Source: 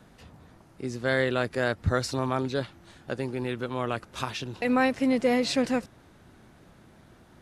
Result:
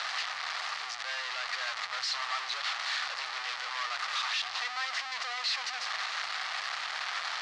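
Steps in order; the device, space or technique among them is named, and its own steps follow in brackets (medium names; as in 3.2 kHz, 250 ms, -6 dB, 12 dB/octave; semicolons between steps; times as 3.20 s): 1.58–3.57 s: high-pass 70 Hz 24 dB/octave; home computer beeper (one-bit comparator; cabinet simulation 730–5200 Hz, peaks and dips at 760 Hz +7 dB, 1.2 kHz +9 dB, 1.9 kHz +6 dB, 4.4 kHz +4 dB); amplifier tone stack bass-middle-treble 10-0-10; trim +1 dB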